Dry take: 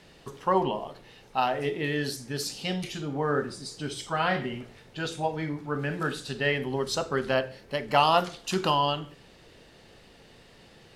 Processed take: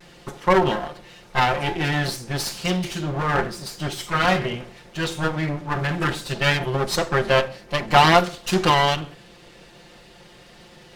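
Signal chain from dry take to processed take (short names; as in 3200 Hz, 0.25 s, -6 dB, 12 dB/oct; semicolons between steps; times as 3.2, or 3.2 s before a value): minimum comb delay 5.7 ms; high shelf 8900 Hz -3.5 dB; vibrato 0.3 Hz 16 cents; gain +8 dB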